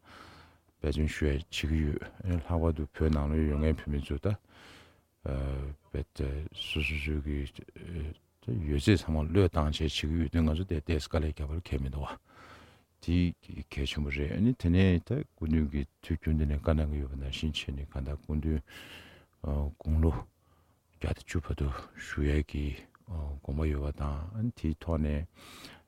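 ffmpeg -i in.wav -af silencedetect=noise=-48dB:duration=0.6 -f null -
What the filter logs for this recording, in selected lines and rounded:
silence_start: 20.25
silence_end: 21.01 | silence_duration: 0.76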